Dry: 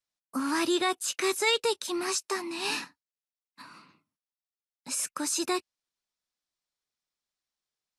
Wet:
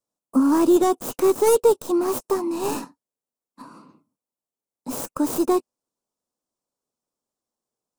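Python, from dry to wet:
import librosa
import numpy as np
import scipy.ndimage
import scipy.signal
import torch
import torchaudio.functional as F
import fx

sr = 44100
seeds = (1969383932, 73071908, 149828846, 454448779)

y = fx.tracing_dist(x, sr, depth_ms=0.31)
y = fx.graphic_eq(y, sr, hz=(125, 250, 500, 1000, 2000, 4000, 8000), db=(5, 11, 10, 7, -11, -6, 5))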